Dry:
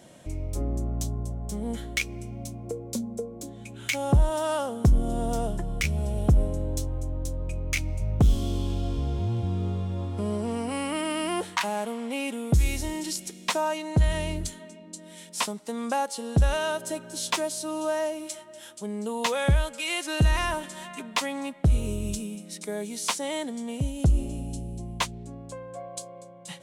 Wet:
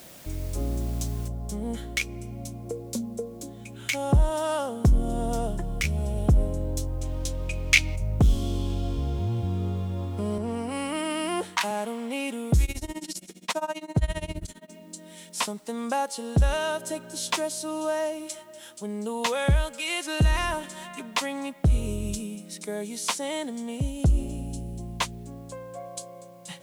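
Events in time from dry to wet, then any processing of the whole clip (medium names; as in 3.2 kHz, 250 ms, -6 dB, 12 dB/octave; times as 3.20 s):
1.28 s: noise floor step -49 dB -66 dB
7.01–7.96 s: peaking EQ 3.1 kHz +13 dB 2.4 oct
10.38–11.71 s: three bands expanded up and down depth 40%
12.64–14.71 s: tremolo 15 Hz, depth 94%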